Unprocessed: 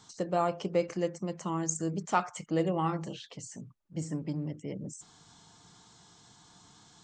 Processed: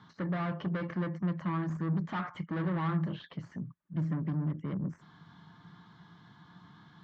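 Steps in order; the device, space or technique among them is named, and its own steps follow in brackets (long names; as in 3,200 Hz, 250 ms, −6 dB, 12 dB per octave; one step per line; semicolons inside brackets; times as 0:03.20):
guitar amplifier (tube saturation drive 37 dB, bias 0.55; bass and treble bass +3 dB, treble −3 dB; loudspeaker in its box 88–3,400 Hz, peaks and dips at 170 Hz +8 dB, 460 Hz −7 dB, 750 Hz −5 dB, 1,100 Hz +4 dB, 1,700 Hz +6 dB, 2,600 Hz −7 dB)
level +4 dB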